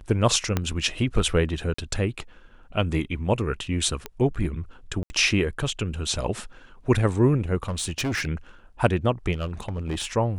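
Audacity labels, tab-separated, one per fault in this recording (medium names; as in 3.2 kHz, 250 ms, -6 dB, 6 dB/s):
0.570000	0.570000	pop -9 dBFS
1.740000	1.780000	dropout 44 ms
4.060000	4.060000	pop -16 dBFS
5.030000	5.100000	dropout 70 ms
7.630000	8.280000	clipped -23 dBFS
9.320000	10.060000	clipped -23.5 dBFS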